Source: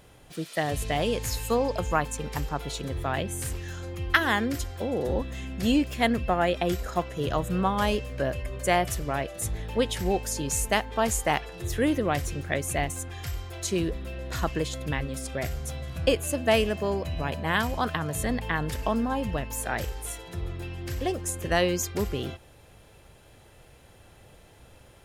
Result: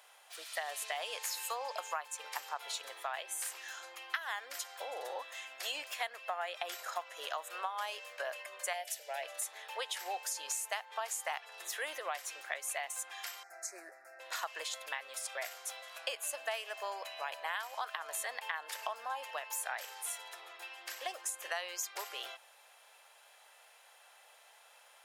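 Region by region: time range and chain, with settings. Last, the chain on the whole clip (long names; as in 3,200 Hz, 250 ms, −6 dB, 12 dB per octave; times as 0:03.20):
0:08.73–0:09.23: low-shelf EQ 130 Hz −11.5 dB + phaser with its sweep stopped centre 310 Hz, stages 6
0:13.43–0:14.20: Butterworth band-reject 3,100 Hz, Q 1 + high-shelf EQ 9,900 Hz −11.5 dB + phaser with its sweep stopped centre 700 Hz, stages 8
whole clip: inverse Chebyshev high-pass filter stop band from 210 Hz, stop band 60 dB; downward compressor 6 to 1, threshold −33 dBFS; level −1.5 dB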